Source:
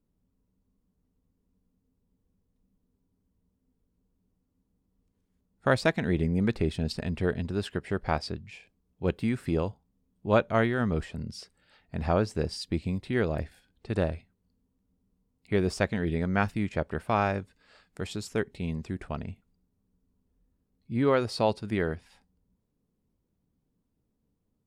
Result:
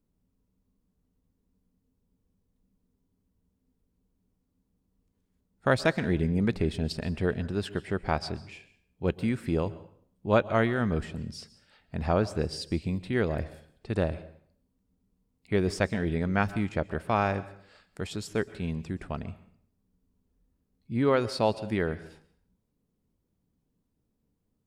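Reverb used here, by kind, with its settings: plate-style reverb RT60 0.58 s, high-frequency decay 0.85×, pre-delay 0.11 s, DRR 16.5 dB

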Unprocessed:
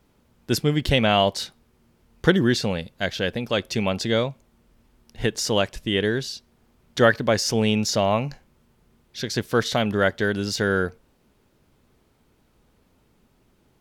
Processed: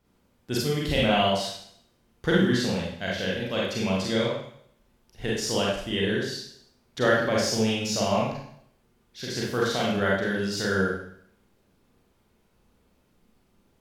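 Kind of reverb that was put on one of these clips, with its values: Schroeder reverb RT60 0.66 s, combs from 32 ms, DRR -5 dB; gain -9 dB

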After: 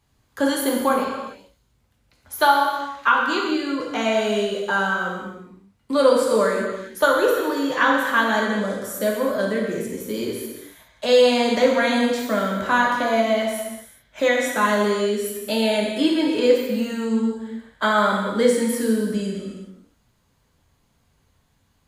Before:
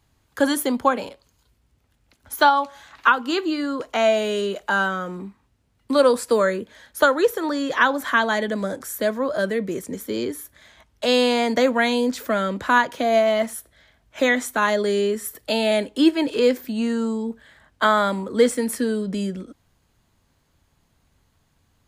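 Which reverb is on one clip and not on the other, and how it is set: non-linear reverb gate 0.44 s falling, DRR -2 dB; gain -3.5 dB

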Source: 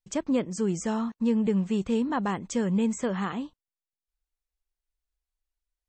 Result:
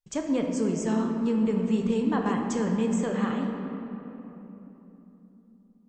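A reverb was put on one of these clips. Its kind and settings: shoebox room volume 190 m³, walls hard, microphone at 0.39 m; gain -2 dB

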